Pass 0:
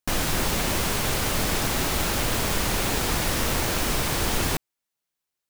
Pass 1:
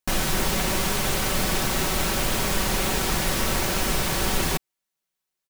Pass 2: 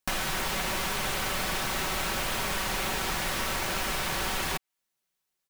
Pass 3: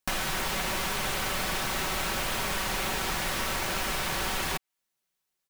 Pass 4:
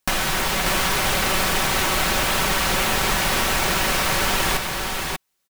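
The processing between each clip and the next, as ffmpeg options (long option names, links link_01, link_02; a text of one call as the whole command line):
ffmpeg -i in.wav -af "aecho=1:1:5.3:0.4" out.wav
ffmpeg -i in.wav -filter_complex "[0:a]acrossover=split=650|3800[link_01][link_02][link_03];[link_01]acompressor=threshold=-37dB:ratio=4[link_04];[link_02]acompressor=threshold=-32dB:ratio=4[link_05];[link_03]acompressor=threshold=-38dB:ratio=4[link_06];[link_04][link_05][link_06]amix=inputs=3:normalize=0,volume=1.5dB" out.wav
ffmpeg -i in.wav -af anull out.wav
ffmpeg -i in.wav -af "aecho=1:1:589:0.631,volume=8dB" out.wav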